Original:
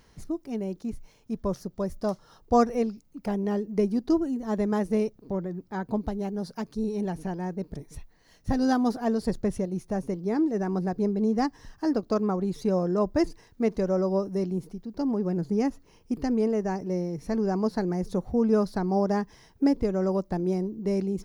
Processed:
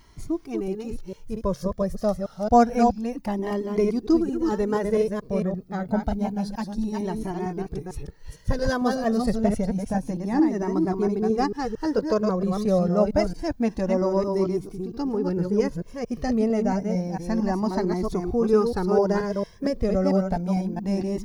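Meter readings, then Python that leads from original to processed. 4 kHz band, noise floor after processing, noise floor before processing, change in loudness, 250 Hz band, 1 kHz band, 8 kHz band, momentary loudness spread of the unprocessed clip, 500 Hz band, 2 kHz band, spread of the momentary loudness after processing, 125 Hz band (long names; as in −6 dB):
+4.5 dB, −48 dBFS, −60 dBFS, +3.0 dB, +2.5 dB, +5.0 dB, can't be measured, 9 LU, +4.0 dB, +5.0 dB, 9 LU, +3.5 dB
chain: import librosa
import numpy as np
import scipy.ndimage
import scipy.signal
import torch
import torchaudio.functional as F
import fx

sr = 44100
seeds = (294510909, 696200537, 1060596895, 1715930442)

y = fx.reverse_delay(x, sr, ms=226, wet_db=-4)
y = fx.comb_cascade(y, sr, direction='rising', hz=0.28)
y = y * 10.0 ** (7.5 / 20.0)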